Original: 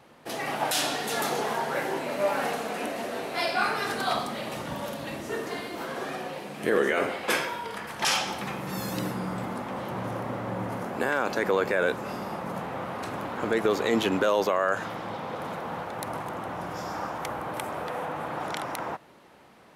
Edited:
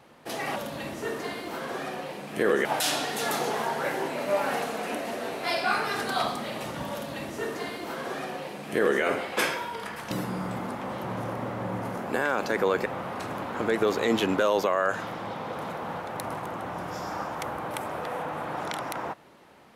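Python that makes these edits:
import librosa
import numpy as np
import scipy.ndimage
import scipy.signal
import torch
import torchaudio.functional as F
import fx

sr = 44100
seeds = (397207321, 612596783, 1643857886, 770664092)

y = fx.edit(x, sr, fx.duplicate(start_s=4.83, length_s=2.09, to_s=0.56),
    fx.cut(start_s=8.02, length_s=0.96),
    fx.cut(start_s=11.73, length_s=0.96), tone=tone)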